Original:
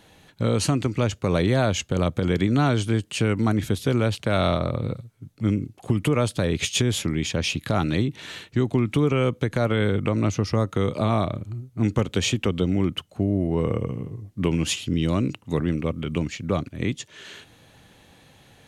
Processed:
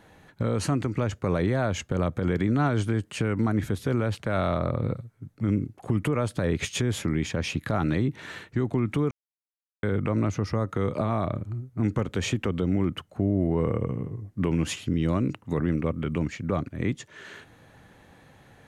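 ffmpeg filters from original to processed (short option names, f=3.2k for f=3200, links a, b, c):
-filter_complex "[0:a]asplit=3[a][b][c];[a]atrim=end=9.11,asetpts=PTS-STARTPTS,afade=t=out:st=9.106:d=0.004:c=hsin[d];[b]atrim=start=9.11:end=9.83,asetpts=PTS-STARTPTS,volume=0[e];[c]atrim=start=9.83,asetpts=PTS-STARTPTS,afade=t=in:d=0.004:c=hsin[f];[d][e][f]concat=n=3:v=0:a=1,highshelf=f=2.3k:t=q:w=1.5:g=-6.5,alimiter=limit=-15.5dB:level=0:latency=1:release=63"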